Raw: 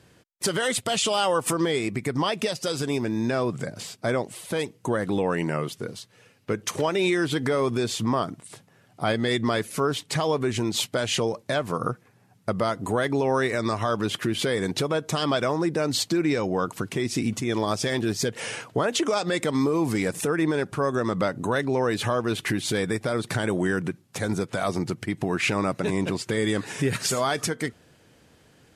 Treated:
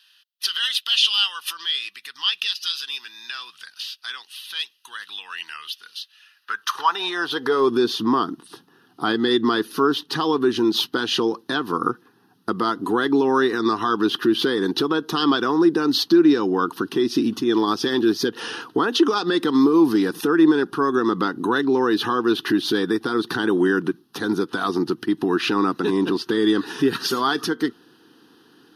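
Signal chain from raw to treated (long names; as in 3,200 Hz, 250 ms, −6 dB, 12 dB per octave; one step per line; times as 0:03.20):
phaser with its sweep stopped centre 2,200 Hz, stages 6
dynamic equaliser 9,500 Hz, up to −6 dB, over −56 dBFS, Q 2
high-pass filter sweep 2,600 Hz → 320 Hz, 0:06.11–0:07.75
level +6.5 dB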